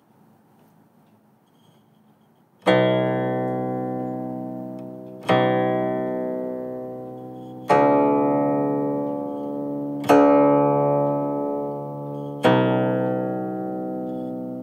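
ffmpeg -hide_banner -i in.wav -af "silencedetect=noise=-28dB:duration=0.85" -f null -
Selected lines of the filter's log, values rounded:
silence_start: 0.00
silence_end: 2.66 | silence_duration: 2.66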